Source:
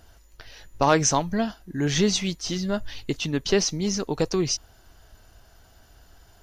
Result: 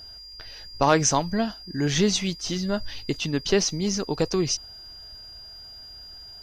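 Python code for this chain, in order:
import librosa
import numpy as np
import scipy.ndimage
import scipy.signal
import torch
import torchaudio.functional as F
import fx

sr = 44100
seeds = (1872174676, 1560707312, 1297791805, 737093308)

y = x + 10.0 ** (-41.0 / 20.0) * np.sin(2.0 * np.pi * 4800.0 * np.arange(len(x)) / sr)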